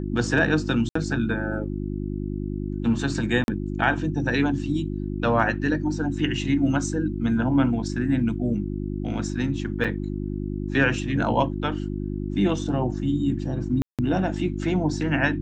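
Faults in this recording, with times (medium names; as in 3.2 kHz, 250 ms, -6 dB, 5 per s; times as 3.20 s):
hum 50 Hz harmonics 7 -29 dBFS
0.89–0.95 s: dropout 64 ms
3.44–3.48 s: dropout 41 ms
9.84–9.85 s: dropout 5.6 ms
13.82–13.99 s: dropout 167 ms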